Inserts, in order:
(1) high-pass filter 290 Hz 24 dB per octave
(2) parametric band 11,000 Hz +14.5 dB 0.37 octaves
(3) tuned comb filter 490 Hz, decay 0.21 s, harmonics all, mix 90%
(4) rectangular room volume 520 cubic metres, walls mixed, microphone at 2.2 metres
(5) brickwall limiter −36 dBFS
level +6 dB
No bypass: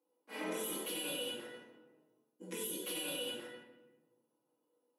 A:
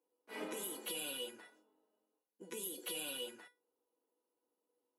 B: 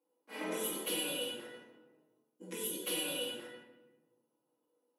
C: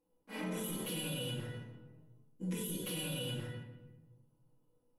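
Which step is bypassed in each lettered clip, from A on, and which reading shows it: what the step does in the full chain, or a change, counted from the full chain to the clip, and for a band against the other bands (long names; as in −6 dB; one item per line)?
4, change in momentary loudness spread +5 LU
5, change in crest factor +5.5 dB
1, 125 Hz band +19.5 dB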